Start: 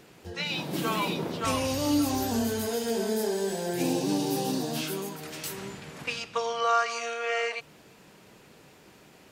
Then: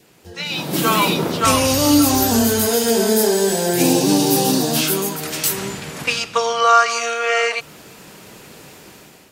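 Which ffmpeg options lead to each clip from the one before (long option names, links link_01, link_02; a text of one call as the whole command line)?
ffmpeg -i in.wav -af "adynamicequalizer=threshold=0.00398:dfrequency=1300:dqfactor=5:tfrequency=1300:tqfactor=5:attack=5:release=100:ratio=0.375:range=2.5:mode=boostabove:tftype=bell,dynaudnorm=framelen=250:gausssize=5:maxgain=12dB,highshelf=frequency=5700:gain=8" out.wav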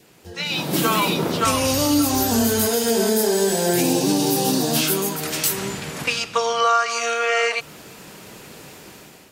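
ffmpeg -i in.wav -af "alimiter=limit=-9dB:level=0:latency=1:release=339" out.wav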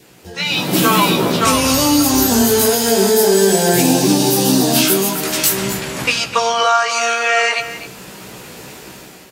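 ffmpeg -i in.wav -filter_complex "[0:a]asplit=2[link_01][link_02];[link_02]adelay=16,volume=-5dB[link_03];[link_01][link_03]amix=inputs=2:normalize=0,aecho=1:1:252:0.224,volume=5dB" out.wav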